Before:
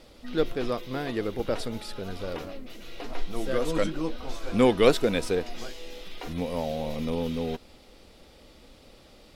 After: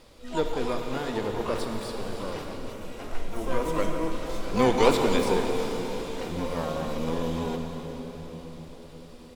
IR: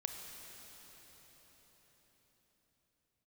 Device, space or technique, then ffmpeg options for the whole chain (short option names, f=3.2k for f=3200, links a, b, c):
shimmer-style reverb: -filter_complex "[0:a]asplit=2[a][b];[b]asetrate=88200,aresample=44100,atempo=0.5,volume=-7dB[c];[a][c]amix=inputs=2:normalize=0[d];[1:a]atrim=start_sample=2205[e];[d][e]afir=irnorm=-1:irlink=0,asettb=1/sr,asplit=3[f][g][h];[f]atrim=end=2.724[i];[g]atrim=start=2.72:end=4.12,asetpts=PTS-STARTPTS,afade=t=in:d=0.004:c=qsin,afade=t=out:st=1.396:d=0.004:c=qsin,equalizer=f=4.2k:w=1.6:g=-6[j];[h]atrim=start=4.116[k];[i][j]acrossfade=d=0.004:c1=hsin:c2=qsin[l];[l][k]acrossfade=d=0.004:c1=qsin:c2=hsin"